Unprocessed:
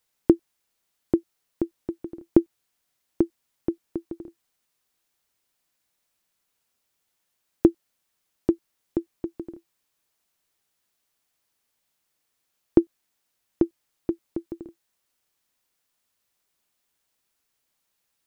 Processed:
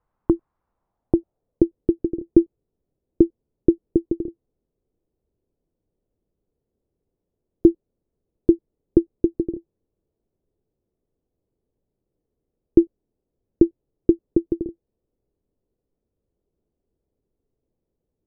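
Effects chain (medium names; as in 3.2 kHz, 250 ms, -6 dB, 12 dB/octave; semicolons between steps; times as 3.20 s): tilt EQ -2 dB/octave; peak limiter -9.5 dBFS, peak gain reduction 11 dB; bass shelf 150 Hz +7 dB; low-pass sweep 1.1 kHz -> 430 Hz, 0.69–1.75 s; trim +2 dB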